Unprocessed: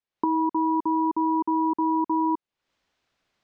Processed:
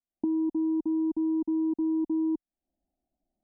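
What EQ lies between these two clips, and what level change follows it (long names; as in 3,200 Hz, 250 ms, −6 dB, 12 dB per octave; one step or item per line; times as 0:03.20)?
elliptic low-pass filter 740 Hz, stop band 40 dB
spectral tilt −2 dB per octave
phaser with its sweep stopped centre 460 Hz, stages 6
−3.0 dB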